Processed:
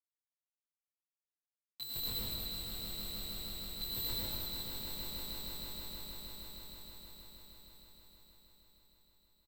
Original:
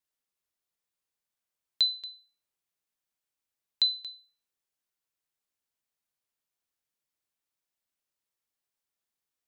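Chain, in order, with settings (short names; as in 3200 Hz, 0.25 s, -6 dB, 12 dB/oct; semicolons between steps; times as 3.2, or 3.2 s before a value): dynamic EQ 3100 Hz, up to +3 dB, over -40 dBFS, Q 4.4; harmonic-percussive split percussive +5 dB; graphic EQ 125/500/1000 Hz +10/-11/+8 dB; sample leveller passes 1; AM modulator 140 Hz, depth 25%; Schmitt trigger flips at -39 dBFS; doubler 23 ms -3 dB; on a send: swelling echo 0.157 s, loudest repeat 5, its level -7 dB; on the sum: plate-style reverb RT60 2.7 s, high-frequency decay 0.95×, pre-delay 85 ms, DRR -7.5 dB; gain -4 dB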